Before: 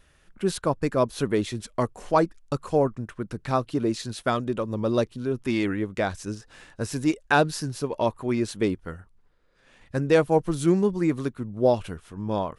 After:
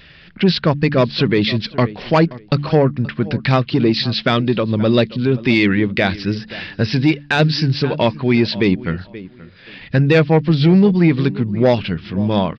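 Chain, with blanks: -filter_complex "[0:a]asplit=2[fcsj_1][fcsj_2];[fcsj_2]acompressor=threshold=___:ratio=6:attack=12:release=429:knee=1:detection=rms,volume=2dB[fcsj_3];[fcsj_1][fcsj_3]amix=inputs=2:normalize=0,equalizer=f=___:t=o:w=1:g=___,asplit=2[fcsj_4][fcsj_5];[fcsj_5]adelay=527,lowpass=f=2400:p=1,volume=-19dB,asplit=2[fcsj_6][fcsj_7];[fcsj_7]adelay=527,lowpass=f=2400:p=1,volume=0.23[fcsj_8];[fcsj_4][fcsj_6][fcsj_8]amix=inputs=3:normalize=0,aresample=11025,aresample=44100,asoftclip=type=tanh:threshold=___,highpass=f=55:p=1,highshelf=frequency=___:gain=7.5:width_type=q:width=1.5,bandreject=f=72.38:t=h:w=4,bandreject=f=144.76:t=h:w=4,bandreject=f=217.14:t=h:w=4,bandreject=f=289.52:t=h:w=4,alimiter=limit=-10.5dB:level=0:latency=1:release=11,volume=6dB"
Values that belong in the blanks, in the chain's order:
-31dB, 160, 9.5, -8dB, 1600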